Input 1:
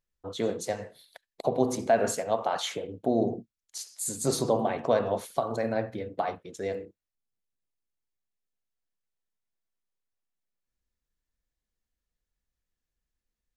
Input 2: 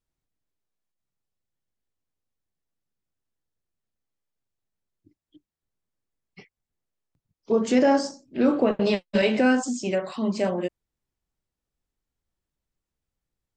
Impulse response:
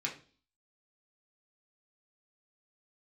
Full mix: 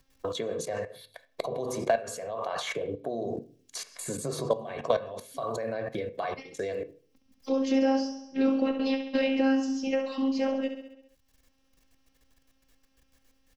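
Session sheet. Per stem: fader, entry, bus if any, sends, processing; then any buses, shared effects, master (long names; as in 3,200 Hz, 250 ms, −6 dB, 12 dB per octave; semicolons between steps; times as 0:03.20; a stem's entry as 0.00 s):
+1.0 dB, 0.00 s, send −11 dB, no echo send, comb filter 1.8 ms, depth 49%; output level in coarse steps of 20 dB
−2.5 dB, 0.00 s, no send, echo send −9 dB, Butterworth low-pass 6,100 Hz 48 dB per octave; phases set to zero 268 Hz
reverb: on, RT60 0.40 s, pre-delay 3 ms
echo: repeating echo 67 ms, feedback 49%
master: multiband upward and downward compressor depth 70%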